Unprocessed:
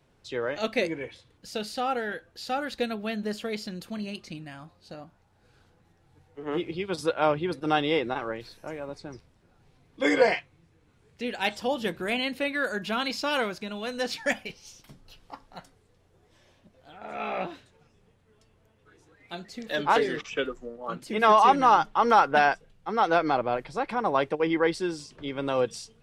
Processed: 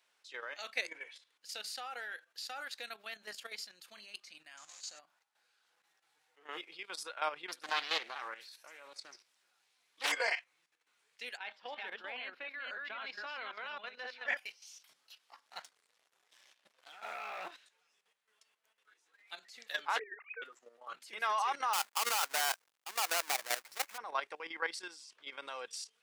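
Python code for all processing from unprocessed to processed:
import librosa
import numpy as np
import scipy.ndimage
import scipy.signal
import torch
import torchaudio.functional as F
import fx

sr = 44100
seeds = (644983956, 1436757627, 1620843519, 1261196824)

y = fx.chain(x, sr, fx.zero_step(step_db=-45.0),
    fx.lowpass_res(hz=6900.0, q=8.6), at=(4.57, 4.99))
y = fx.chain(y, sr, fx.high_shelf(hz=3300.0, db=7.0),
    fx.echo_single(ms=75, db=-17.5),
    fx.doppler_dist(depth_ms=0.53), at=(7.48, 10.12))
y = fx.chain(y, sr, fx.reverse_delay(ms=268, wet_db=-2.0),
    fx.air_absorb(metres=330.0), at=(11.37, 14.37))
y = fx.chain(y, sr, fx.env_lowpass_down(base_hz=3000.0, full_db=-32.5),
    fx.low_shelf(hz=230.0, db=6.5),
    fx.leveller(passes=2), at=(15.46, 17.51))
y = fx.chain(y, sr, fx.sine_speech(),
    fx.steep_lowpass(hz=2600.0, slope=96),
    fx.band_squash(depth_pct=100), at=(19.99, 20.42))
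y = fx.chain(y, sr, fx.halfwave_hold(),
    fx.level_steps(step_db=11), at=(21.73, 23.98))
y = scipy.signal.sosfilt(scipy.signal.bessel(2, 1700.0, 'highpass', norm='mag', fs=sr, output='sos'), y)
y = fx.dynamic_eq(y, sr, hz=3200.0, q=1.7, threshold_db=-47.0, ratio=4.0, max_db=-4)
y = fx.level_steps(y, sr, step_db=11)
y = y * librosa.db_to_amplitude(1.0)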